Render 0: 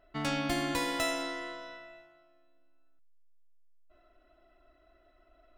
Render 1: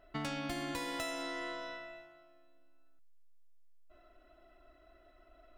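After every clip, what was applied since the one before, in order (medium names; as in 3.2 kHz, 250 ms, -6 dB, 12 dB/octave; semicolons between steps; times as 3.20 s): compression 6:1, threshold -38 dBFS, peak gain reduction 10.5 dB; trim +2 dB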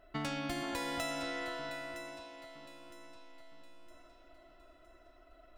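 echo whose repeats swap between lows and highs 481 ms, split 1.7 kHz, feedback 64%, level -7.5 dB; trim +1 dB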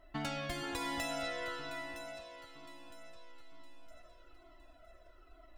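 Shepard-style flanger falling 1.1 Hz; trim +4 dB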